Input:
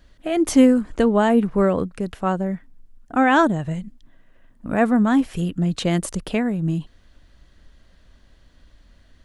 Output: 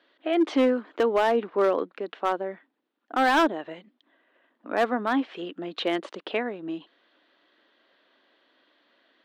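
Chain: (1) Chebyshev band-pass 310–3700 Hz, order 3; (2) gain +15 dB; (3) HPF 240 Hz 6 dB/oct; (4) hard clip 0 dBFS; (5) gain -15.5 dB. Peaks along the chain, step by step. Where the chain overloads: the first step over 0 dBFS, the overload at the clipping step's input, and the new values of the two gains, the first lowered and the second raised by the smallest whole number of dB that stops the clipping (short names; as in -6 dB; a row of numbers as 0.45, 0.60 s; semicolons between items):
-5.5, +9.5, +8.5, 0.0, -15.5 dBFS; step 2, 8.5 dB; step 2 +6 dB, step 5 -6.5 dB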